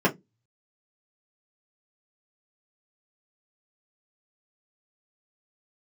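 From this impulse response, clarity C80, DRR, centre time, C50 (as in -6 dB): 30.5 dB, -3.5 dB, 13 ms, 20.5 dB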